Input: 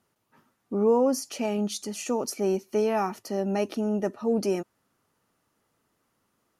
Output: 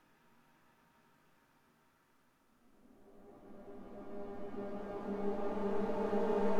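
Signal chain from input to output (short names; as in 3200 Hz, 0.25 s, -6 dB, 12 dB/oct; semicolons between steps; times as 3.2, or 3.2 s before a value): half-wave rectifier; Paulstretch 16×, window 0.50 s, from 0.35; gain -2 dB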